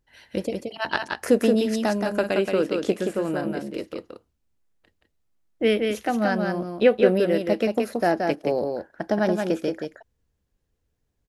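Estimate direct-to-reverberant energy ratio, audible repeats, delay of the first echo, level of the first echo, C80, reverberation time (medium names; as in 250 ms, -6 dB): no reverb, 1, 175 ms, -4.5 dB, no reverb, no reverb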